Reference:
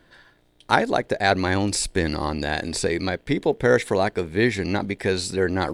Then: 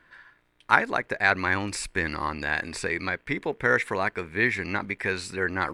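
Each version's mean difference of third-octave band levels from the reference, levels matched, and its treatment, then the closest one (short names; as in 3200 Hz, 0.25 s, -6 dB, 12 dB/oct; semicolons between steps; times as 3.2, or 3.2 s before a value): 4.0 dB: band shelf 1600 Hz +11 dB; gain -8.5 dB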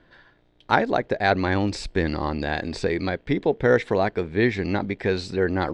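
3.0 dB: air absorption 160 m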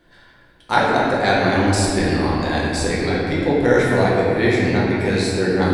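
7.0 dB: shoebox room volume 120 m³, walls hard, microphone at 0.84 m; gain -3 dB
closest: second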